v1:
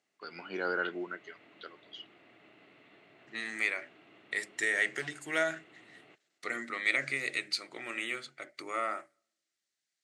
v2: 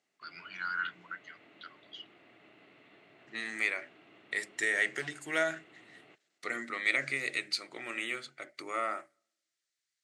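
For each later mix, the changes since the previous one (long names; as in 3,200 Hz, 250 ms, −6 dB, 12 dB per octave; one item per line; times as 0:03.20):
first voice: add inverse Chebyshev band-stop filter 240–690 Hz, stop band 40 dB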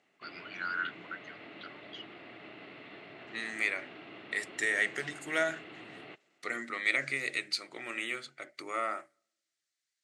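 background +10.5 dB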